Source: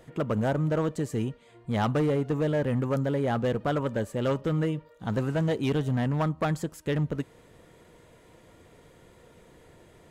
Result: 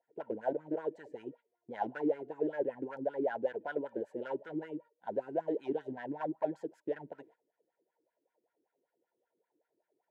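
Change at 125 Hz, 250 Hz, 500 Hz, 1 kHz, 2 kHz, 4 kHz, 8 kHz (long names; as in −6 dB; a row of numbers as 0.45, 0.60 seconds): −28.5 dB, −11.0 dB, −6.5 dB, −7.5 dB, −9.5 dB, below −20 dB, below −25 dB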